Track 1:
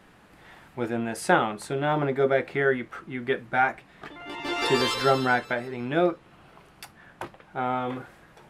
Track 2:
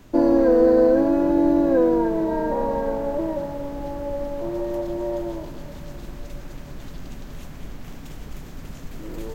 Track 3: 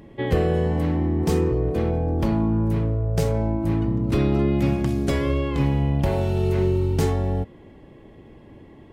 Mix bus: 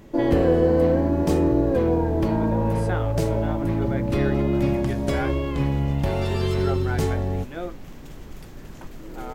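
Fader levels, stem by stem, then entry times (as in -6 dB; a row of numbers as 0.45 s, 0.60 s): -10.0 dB, -4.0 dB, -2.0 dB; 1.60 s, 0.00 s, 0.00 s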